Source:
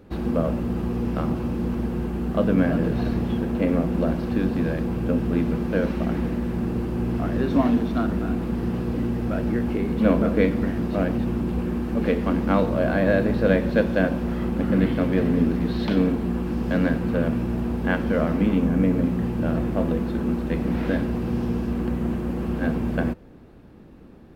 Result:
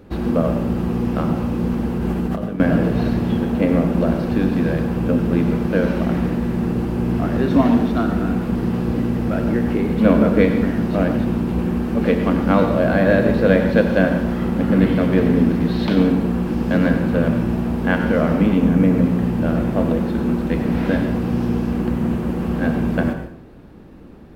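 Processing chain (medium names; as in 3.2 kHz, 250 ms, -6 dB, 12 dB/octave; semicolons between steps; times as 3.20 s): 1.98–2.60 s: compressor with a negative ratio -28 dBFS, ratio -1; plate-style reverb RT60 0.57 s, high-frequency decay 0.9×, pre-delay 80 ms, DRR 7 dB; trim +4.5 dB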